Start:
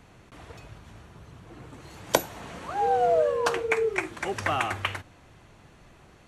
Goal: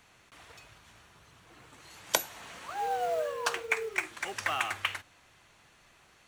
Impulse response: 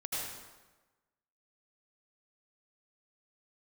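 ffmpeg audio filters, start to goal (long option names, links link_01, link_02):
-af "tiltshelf=frequency=770:gain=-8,acrusher=bits=6:mode=log:mix=0:aa=0.000001,volume=-7.5dB"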